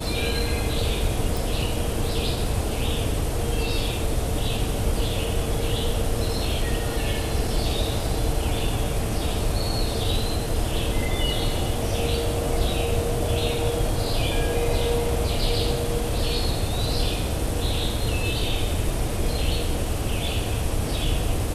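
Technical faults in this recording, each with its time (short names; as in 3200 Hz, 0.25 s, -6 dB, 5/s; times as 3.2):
1.37 pop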